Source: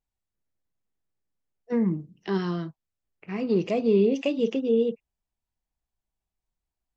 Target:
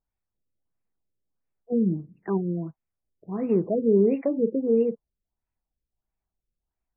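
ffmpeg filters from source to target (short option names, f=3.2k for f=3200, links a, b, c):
-af "afftfilt=real='re*lt(b*sr/1024,560*pow(2800/560,0.5+0.5*sin(2*PI*1.5*pts/sr)))':imag='im*lt(b*sr/1024,560*pow(2800/560,0.5+0.5*sin(2*PI*1.5*pts/sr)))':win_size=1024:overlap=0.75,volume=1dB"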